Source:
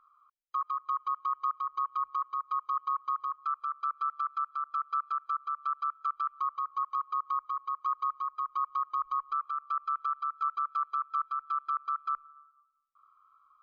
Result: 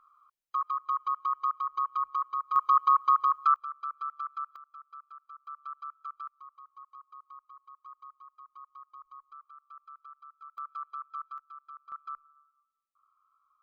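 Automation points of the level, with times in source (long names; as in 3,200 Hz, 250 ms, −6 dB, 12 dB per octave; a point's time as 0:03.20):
+1.5 dB
from 0:02.56 +9 dB
from 0:03.56 −4 dB
from 0:04.56 −16.5 dB
from 0:05.47 −9 dB
from 0:06.28 −18 dB
from 0:10.58 −8 dB
from 0:11.38 −16 dB
from 0:11.92 −8 dB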